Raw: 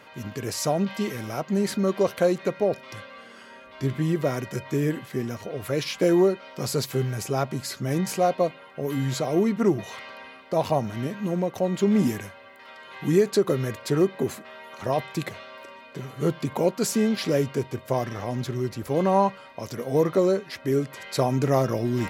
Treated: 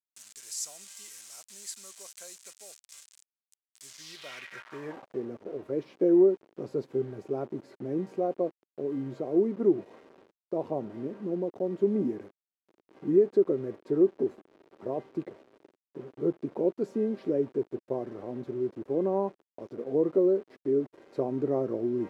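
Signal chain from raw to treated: bit-crush 6-bit; band-pass sweep 7700 Hz -> 360 Hz, 3.85–5.31

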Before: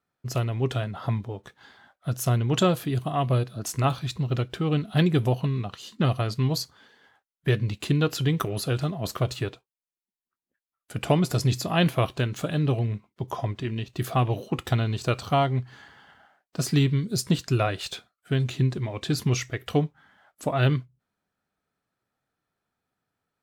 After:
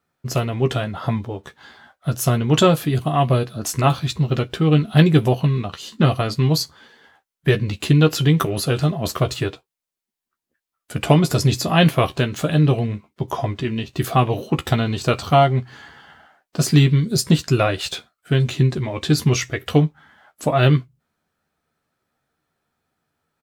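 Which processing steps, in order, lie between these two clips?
doubler 13 ms -7 dB; gain +6.5 dB

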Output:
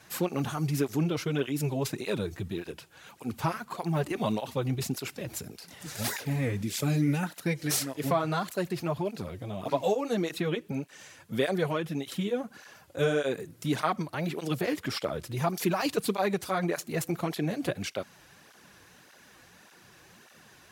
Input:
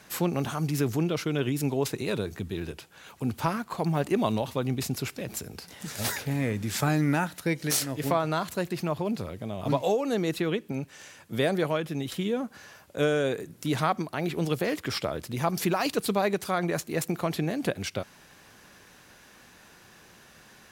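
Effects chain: 6.63–7.23 band shelf 1100 Hz -9.5 dB; tape flanging out of phase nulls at 1.7 Hz, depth 5.3 ms; gain +1 dB

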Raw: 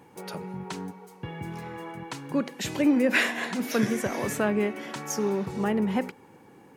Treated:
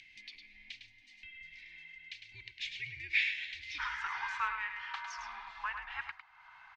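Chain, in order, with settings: LPF 4300 Hz 24 dB/oct; tilt -2 dB/oct; echo 0.104 s -7.5 dB; frequency shift -170 Hz; elliptic high-pass 2100 Hz, stop band 40 dB, from 3.78 s 940 Hz; upward compressor, threshold -48 dBFS; gain +1.5 dB

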